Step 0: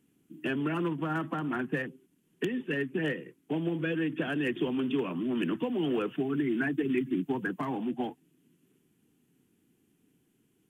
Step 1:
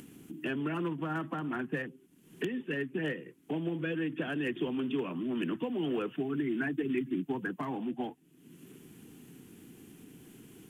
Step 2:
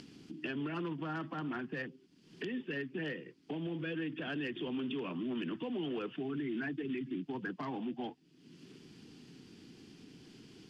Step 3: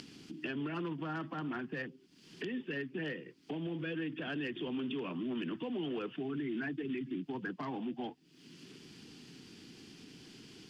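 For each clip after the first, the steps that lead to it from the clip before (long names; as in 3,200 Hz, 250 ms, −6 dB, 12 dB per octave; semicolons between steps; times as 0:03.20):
upward compression, threshold −32 dBFS; level −3 dB
brickwall limiter −28 dBFS, peak gain reduction 7.5 dB; low-pass with resonance 4,800 Hz, resonance Q 6.3; level −2.5 dB
one half of a high-frequency compander encoder only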